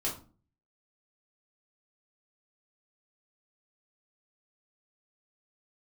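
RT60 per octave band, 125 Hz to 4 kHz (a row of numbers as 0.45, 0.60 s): 0.65, 0.55, 0.40, 0.35, 0.30, 0.25 s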